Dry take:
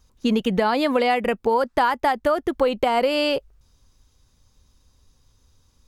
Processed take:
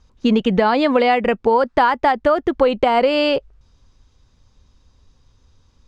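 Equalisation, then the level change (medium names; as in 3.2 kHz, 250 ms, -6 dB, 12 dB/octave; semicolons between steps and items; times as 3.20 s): distance through air 110 m; +5.0 dB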